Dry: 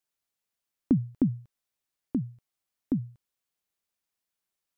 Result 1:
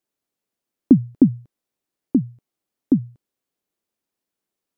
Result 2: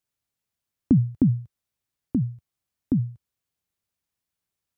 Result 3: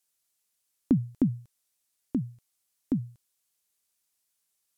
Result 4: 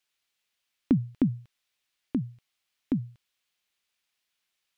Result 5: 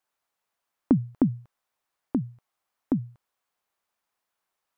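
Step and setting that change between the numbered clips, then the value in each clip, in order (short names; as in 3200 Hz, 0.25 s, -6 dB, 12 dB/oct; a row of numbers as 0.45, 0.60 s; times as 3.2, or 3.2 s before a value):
bell, frequency: 310, 89, 9700, 2900, 970 Hz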